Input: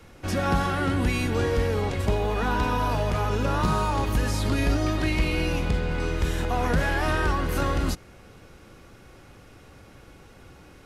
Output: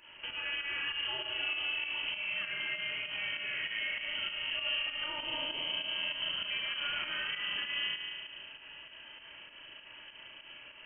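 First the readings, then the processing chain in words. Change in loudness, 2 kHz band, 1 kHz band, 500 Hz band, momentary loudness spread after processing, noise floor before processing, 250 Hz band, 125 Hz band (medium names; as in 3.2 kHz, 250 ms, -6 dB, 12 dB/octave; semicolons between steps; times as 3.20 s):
-8.5 dB, -3.0 dB, -19.0 dB, -22.5 dB, 16 LU, -50 dBFS, -28.5 dB, -36.0 dB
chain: high-pass 130 Hz 6 dB/octave; compression 2.5:1, threshold -40 dBFS, peak gain reduction 13 dB; spring tank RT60 2 s, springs 36 ms, chirp 65 ms, DRR 0 dB; frequency inversion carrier 3.1 kHz; volume shaper 98 bpm, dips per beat 2, -8 dB, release 125 ms; trim -2.5 dB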